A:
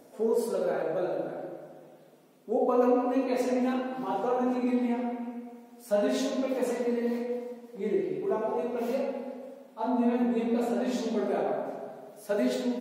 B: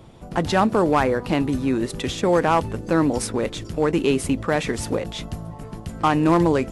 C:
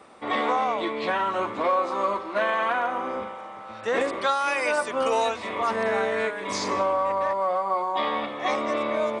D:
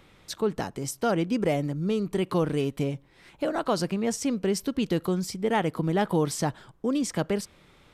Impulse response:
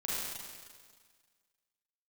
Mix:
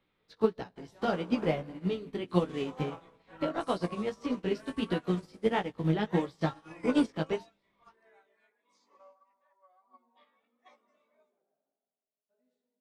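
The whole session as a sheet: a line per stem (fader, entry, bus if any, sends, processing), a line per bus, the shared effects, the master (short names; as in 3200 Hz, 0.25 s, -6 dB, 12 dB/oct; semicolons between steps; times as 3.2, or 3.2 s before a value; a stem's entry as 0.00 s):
-19.5 dB, 0.00 s, no send, dry
-15.5 dB, 0.40 s, send -4 dB, auto duck -7 dB, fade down 1.35 s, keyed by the fourth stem
-17.0 dB, 2.20 s, send -20.5 dB, AGC gain up to 11 dB; reverb removal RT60 1.9 s; HPF 520 Hz 6 dB/oct
+2.5 dB, 0.00 s, send -18.5 dB, resonant high shelf 5600 Hz -11.5 dB, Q 1.5; vibrato 4.2 Hz 9.4 cents; three-band squash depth 40%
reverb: on, RT60 1.7 s, pre-delay 34 ms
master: chorus 1.6 Hz, delay 16 ms, depth 3.3 ms; upward expander 2.5:1, over -40 dBFS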